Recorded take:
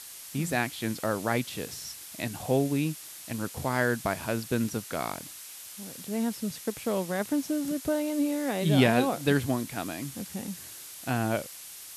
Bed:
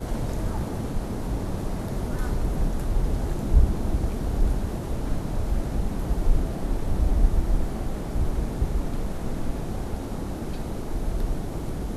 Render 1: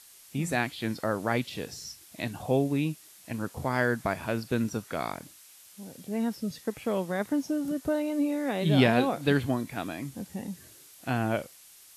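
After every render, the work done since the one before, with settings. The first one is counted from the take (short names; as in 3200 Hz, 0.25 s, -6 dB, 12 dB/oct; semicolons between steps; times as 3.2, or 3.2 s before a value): noise print and reduce 9 dB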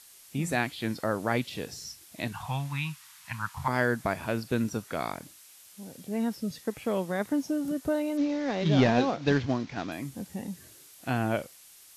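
2.32–3.68 EQ curve 140 Hz 0 dB, 210 Hz -11 dB, 420 Hz -29 dB, 660 Hz -12 dB, 950 Hz +10 dB, 9100 Hz -1 dB; 8.17–9.92 CVSD 32 kbps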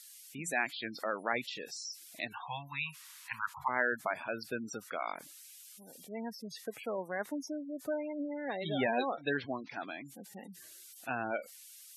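HPF 980 Hz 6 dB/oct; spectral gate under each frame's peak -15 dB strong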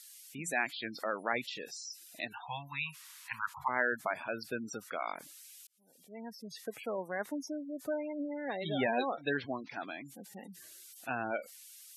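1.69–2.49 notch comb 1100 Hz; 5.67–6.66 fade in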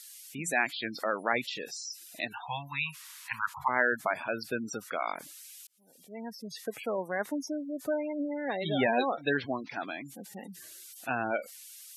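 gain +4.5 dB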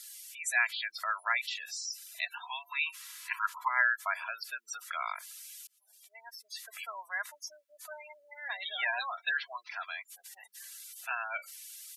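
inverse Chebyshev high-pass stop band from 300 Hz, stop band 60 dB; comb 3 ms, depth 53%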